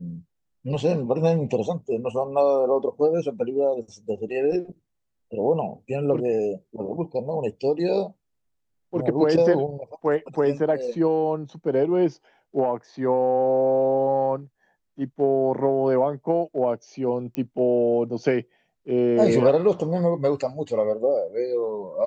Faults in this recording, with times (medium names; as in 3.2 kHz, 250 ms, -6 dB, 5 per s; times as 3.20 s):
17.35 s: pop -17 dBFS